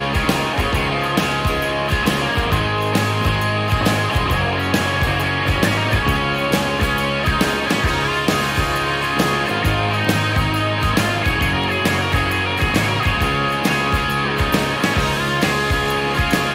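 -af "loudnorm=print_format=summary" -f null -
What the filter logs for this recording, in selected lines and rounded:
Input Integrated:    -18.0 LUFS
Input True Peak:      -4.1 dBTP
Input LRA:             0.4 LU
Input Threshold:     -28.0 LUFS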